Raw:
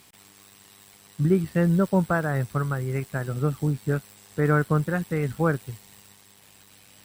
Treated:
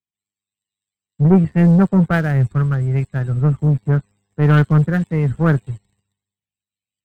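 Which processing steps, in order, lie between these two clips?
low-pass 10 kHz 24 dB/octave; tone controls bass +8 dB, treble -4 dB; loudest bins only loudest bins 64; waveshaping leveller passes 2; three bands expanded up and down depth 100%; trim -1.5 dB

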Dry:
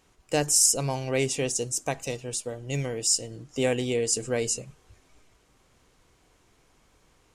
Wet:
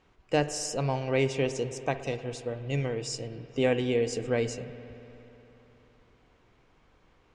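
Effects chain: low-pass 3.2 kHz 12 dB/octave; reverberation RT60 3.4 s, pre-delay 59 ms, DRR 11.5 dB

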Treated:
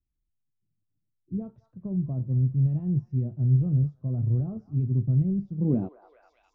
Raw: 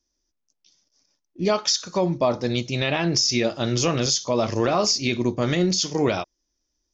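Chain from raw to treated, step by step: tape speed +6%; repeats whose band climbs or falls 206 ms, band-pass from 1.2 kHz, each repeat 0.7 oct, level -11 dB; low-pass sweep 130 Hz -> 2.2 kHz, 5.47–6.93 s

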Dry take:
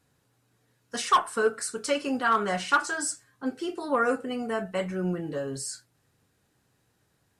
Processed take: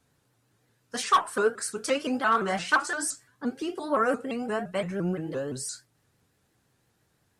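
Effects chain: vibrato with a chosen wave saw up 5.8 Hz, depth 160 cents

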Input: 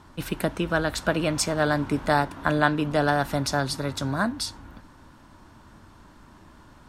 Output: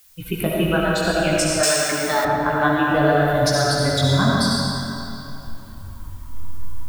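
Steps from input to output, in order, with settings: expander on every frequency bin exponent 2; recorder AGC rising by 24 dB/s; chorus 0.56 Hz, delay 15.5 ms, depth 7.4 ms; reverberation RT60 2.9 s, pre-delay 30 ms, DRR -4 dB; added noise blue -57 dBFS; 1.63–2.25 s: tilt EQ +4 dB/octave; trim +4.5 dB

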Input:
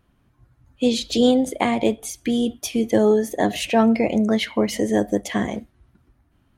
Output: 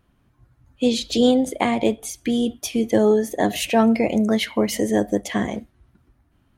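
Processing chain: 3.44–4.91 s: treble shelf 11 kHz +11.5 dB

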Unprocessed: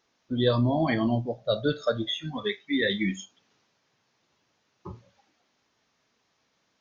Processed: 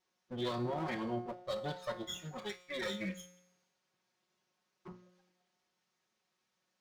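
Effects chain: comb filter that takes the minimum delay 5.4 ms; high-pass 100 Hz 6 dB/octave; in parallel at -2 dB: peak limiter -24.5 dBFS, peak gain reduction 11.5 dB; on the sum: feedback comb 180 Hz, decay 0.92 s, harmonics all, mix 70%; trim -4.5 dB

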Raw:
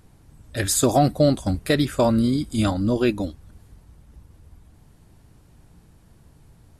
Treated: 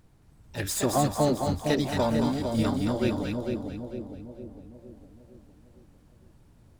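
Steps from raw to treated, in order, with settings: median filter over 3 samples; harmony voices +7 st -9 dB; two-band feedback delay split 690 Hz, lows 457 ms, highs 222 ms, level -4 dB; trim -7.5 dB

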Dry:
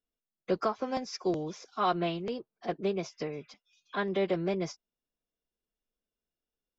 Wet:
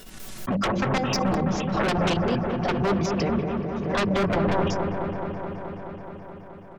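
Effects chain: pitch shift switched off and on -11.5 st, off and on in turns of 94 ms; bass shelf 350 Hz +3.5 dB; hum notches 50/100/150/200/250/300/350 Hz; comb 5.3 ms, depth 50%; overload inside the chain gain 20.5 dB; level held to a coarse grid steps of 10 dB; sine folder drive 11 dB, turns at -20.5 dBFS; on a send: feedback echo behind a low-pass 213 ms, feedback 79%, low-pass 1.5 kHz, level -4.5 dB; on the sum: swell ahead of each attack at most 42 dB/s

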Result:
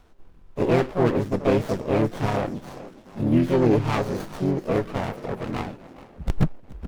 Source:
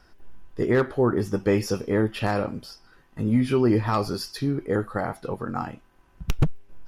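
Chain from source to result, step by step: frequency-shifting echo 420 ms, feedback 51%, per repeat +37 Hz, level -18 dB; harmony voices +5 st -3 dB, +7 st -17 dB; sliding maximum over 17 samples

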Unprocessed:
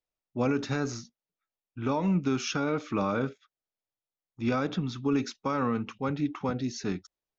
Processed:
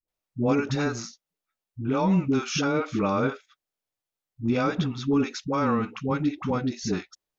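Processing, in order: phase dispersion highs, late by 82 ms, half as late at 420 Hz; trim +4 dB

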